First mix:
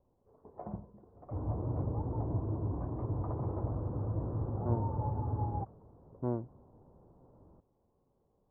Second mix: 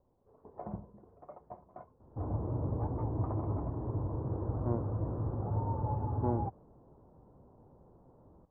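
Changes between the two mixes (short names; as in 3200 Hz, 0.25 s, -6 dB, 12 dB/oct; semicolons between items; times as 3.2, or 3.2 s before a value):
second sound: entry +0.85 s; master: remove air absorption 370 m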